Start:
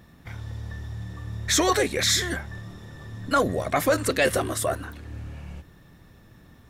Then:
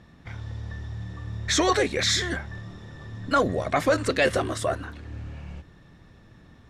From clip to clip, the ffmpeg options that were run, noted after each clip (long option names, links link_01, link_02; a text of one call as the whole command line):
ffmpeg -i in.wav -af "lowpass=6200" out.wav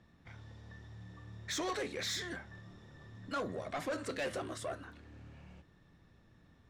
ffmpeg -i in.wav -filter_complex "[0:a]acrossover=split=110[link_01][link_02];[link_01]acompressor=threshold=-48dB:ratio=6[link_03];[link_03][link_02]amix=inputs=2:normalize=0,flanger=delay=9.4:depth=4:regen=-79:speed=0.88:shape=sinusoidal,asoftclip=type=tanh:threshold=-24dB,volume=-7.5dB" out.wav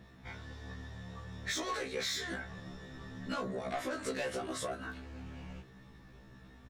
ffmpeg -i in.wav -filter_complex "[0:a]acompressor=threshold=-43dB:ratio=10,asplit=2[link_01][link_02];[link_02]adelay=20,volume=-11dB[link_03];[link_01][link_03]amix=inputs=2:normalize=0,afftfilt=real='re*1.73*eq(mod(b,3),0)':imag='im*1.73*eq(mod(b,3),0)':win_size=2048:overlap=0.75,volume=11dB" out.wav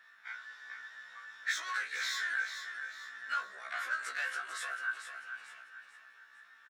ffmpeg -i in.wav -filter_complex "[0:a]highpass=frequency=1500:width_type=q:width=5.1,asplit=2[link_01][link_02];[link_02]aecho=0:1:444|888|1332|1776:0.376|0.143|0.0543|0.0206[link_03];[link_01][link_03]amix=inputs=2:normalize=0,volume=-3dB" out.wav